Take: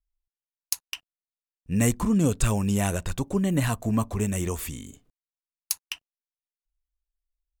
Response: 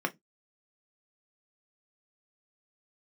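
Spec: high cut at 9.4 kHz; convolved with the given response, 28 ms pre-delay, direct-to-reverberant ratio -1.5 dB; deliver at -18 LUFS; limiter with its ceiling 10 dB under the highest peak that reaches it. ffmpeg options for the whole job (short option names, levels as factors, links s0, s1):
-filter_complex "[0:a]lowpass=9400,alimiter=limit=0.126:level=0:latency=1,asplit=2[s0][s1];[1:a]atrim=start_sample=2205,adelay=28[s2];[s1][s2]afir=irnorm=-1:irlink=0,volume=0.501[s3];[s0][s3]amix=inputs=2:normalize=0,volume=2"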